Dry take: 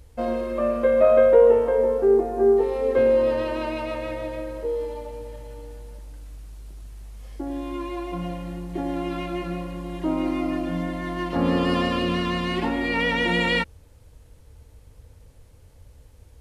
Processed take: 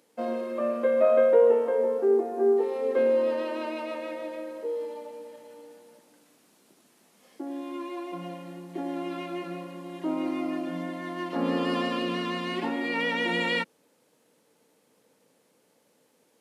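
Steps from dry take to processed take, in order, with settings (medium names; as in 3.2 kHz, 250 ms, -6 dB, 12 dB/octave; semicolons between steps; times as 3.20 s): steep high-pass 190 Hz 36 dB/octave; trim -4.5 dB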